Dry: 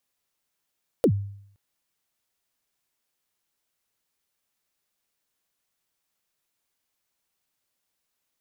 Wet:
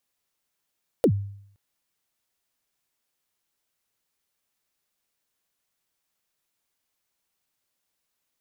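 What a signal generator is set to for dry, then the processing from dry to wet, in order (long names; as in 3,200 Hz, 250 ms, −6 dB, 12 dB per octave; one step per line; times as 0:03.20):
synth kick length 0.52 s, from 560 Hz, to 100 Hz, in 73 ms, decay 0.67 s, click on, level −13 dB
dynamic equaliser 1,800 Hz, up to +5 dB, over −45 dBFS, Q 0.77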